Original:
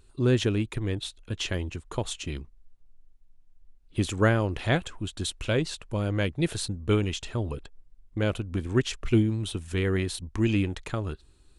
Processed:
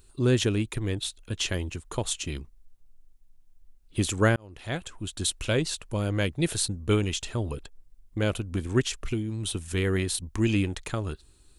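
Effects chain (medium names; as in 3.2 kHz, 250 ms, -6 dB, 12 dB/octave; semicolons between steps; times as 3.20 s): treble shelf 6.5 kHz +11.5 dB; 4.36–5.25 s: fade in; 8.81–9.45 s: compression 4:1, threshold -27 dBFS, peak gain reduction 9.5 dB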